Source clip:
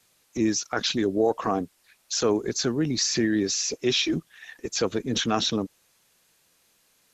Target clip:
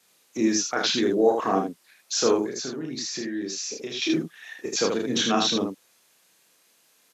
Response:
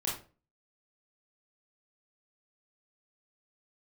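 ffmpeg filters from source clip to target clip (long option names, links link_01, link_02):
-filter_complex "[0:a]highpass=190,asettb=1/sr,asplit=3[link_01][link_02][link_03];[link_01]atrim=end=2.404[link_04];[link_02]atrim=start=2.4:end=4.02,asetpts=PTS-STARTPTS,afade=type=in:duration=0.004:curve=qsin,afade=type=out:start_time=1.616:duration=0.004:curve=qsin,acompressor=threshold=-32dB:ratio=6[link_05];[link_03]atrim=start=4.016[link_06];[link_04][link_05]acrossfade=duration=0.004:curve1=hsin:curve2=qsin[link_07];[link_07][link_06]acrossfade=duration=0.004:curve1=qsin:curve2=hsin,aecho=1:1:31|78:0.668|0.631"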